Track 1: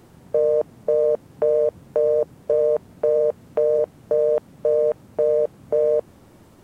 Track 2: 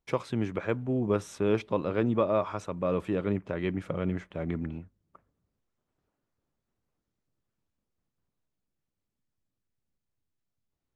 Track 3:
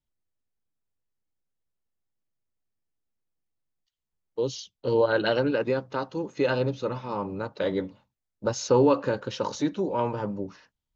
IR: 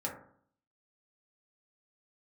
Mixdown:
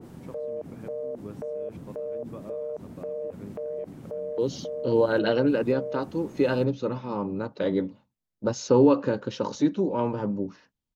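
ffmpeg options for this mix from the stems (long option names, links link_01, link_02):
-filter_complex "[0:a]alimiter=limit=-21dB:level=0:latency=1:release=38,adynamicequalizer=threshold=0.00562:dfrequency=1600:dqfactor=0.7:tfrequency=1600:tqfactor=0.7:attack=5:release=100:ratio=0.375:range=2:mode=cutabove:tftype=highshelf,volume=-0.5dB[link_01];[1:a]adelay=150,volume=-19.5dB[link_02];[2:a]volume=-3dB[link_03];[link_01][link_02]amix=inputs=2:normalize=0,alimiter=level_in=6dB:limit=-24dB:level=0:latency=1:release=47,volume=-6dB,volume=0dB[link_04];[link_03][link_04]amix=inputs=2:normalize=0,equalizer=frequency=240:width=0.78:gain=8"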